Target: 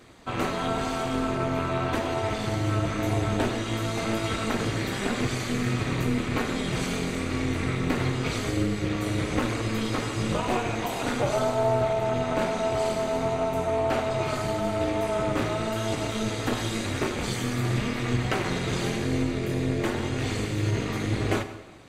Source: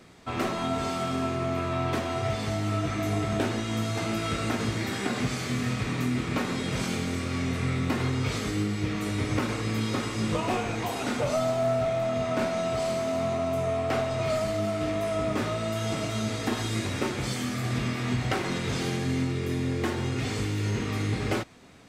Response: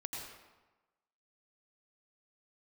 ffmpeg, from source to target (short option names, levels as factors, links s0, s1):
-filter_complex "[0:a]flanger=delay=2.6:depth=4.5:regen=-45:speed=0.94:shape=sinusoidal,tremolo=f=230:d=0.788,bandreject=f=5300:w=9.7,asplit=2[s0][s1];[1:a]atrim=start_sample=2205[s2];[s1][s2]afir=irnorm=-1:irlink=0,volume=0.447[s3];[s0][s3]amix=inputs=2:normalize=0,volume=2.11"